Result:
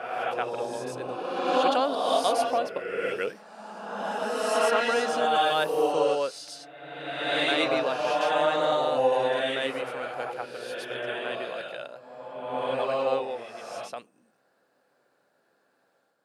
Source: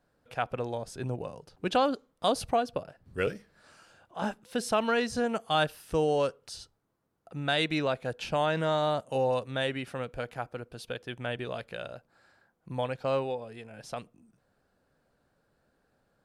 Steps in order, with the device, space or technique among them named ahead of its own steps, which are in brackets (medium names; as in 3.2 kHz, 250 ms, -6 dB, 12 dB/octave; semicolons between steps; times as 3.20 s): ghost voice (reverse; reverberation RT60 1.8 s, pre-delay 98 ms, DRR -4 dB; reverse; high-pass 340 Hz 12 dB/octave)